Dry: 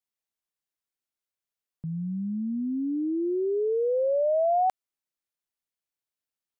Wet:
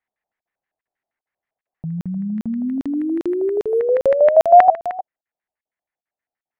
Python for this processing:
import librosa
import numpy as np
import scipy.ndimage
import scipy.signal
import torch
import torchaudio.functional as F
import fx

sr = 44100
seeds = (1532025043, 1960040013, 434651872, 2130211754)

p1 = fx.peak_eq(x, sr, hz=820.0, db=5.0, octaves=0.55)
p2 = fx.rider(p1, sr, range_db=4, speed_s=0.5)
p3 = p1 + (p2 * 10.0 ** (0.5 / 20.0))
p4 = fx.filter_lfo_lowpass(p3, sr, shape='square', hz=6.3, low_hz=690.0, high_hz=1900.0, q=4.3)
p5 = p4 + fx.echo_single(p4, sr, ms=306, db=-16.0, dry=0)
p6 = fx.buffer_crackle(p5, sr, first_s=0.41, period_s=0.4, block=2048, kind='zero')
p7 = fx.resample_linear(p6, sr, factor=4, at=(2.55, 3.8))
y = p7 * 10.0 ** (-2.5 / 20.0)